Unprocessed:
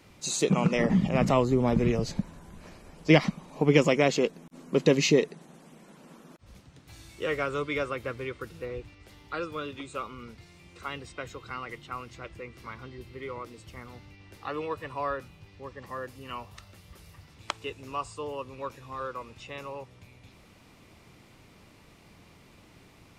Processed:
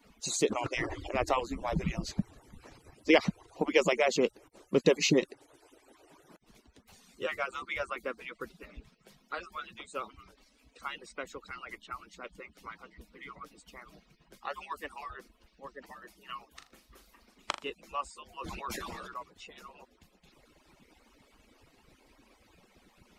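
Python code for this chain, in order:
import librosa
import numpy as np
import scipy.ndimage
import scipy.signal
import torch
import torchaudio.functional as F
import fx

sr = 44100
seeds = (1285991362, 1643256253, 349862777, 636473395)

y = fx.hpss_only(x, sr, part='percussive')
y = fx.high_shelf(y, sr, hz=4800.0, db=9.5, at=(14.5, 15.04))
y = fx.room_flutter(y, sr, wall_m=6.9, rt60_s=0.28, at=(16.52, 17.7))
y = fx.sustainer(y, sr, db_per_s=21.0, at=(18.32, 19.17))
y = F.gain(torch.from_numpy(y), -1.5).numpy()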